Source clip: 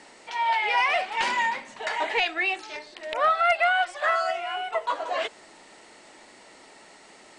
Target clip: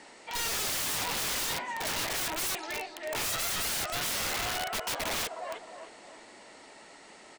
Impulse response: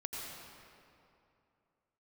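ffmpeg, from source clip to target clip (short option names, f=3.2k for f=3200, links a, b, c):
-filter_complex "[0:a]asplit=2[a][b];[b]adelay=310,lowpass=f=1.7k:p=1,volume=-8.5dB,asplit=2[c][d];[d]adelay=310,lowpass=f=1.7k:p=1,volume=0.43,asplit=2[e][f];[f]adelay=310,lowpass=f=1.7k:p=1,volume=0.43,asplit=2[g][h];[h]adelay=310,lowpass=f=1.7k:p=1,volume=0.43,asplit=2[i][j];[j]adelay=310,lowpass=f=1.7k:p=1,volume=0.43[k];[a][c][e][g][i][k]amix=inputs=6:normalize=0,aeval=exprs='(mod(18.8*val(0)+1,2)-1)/18.8':c=same,volume=-1.5dB"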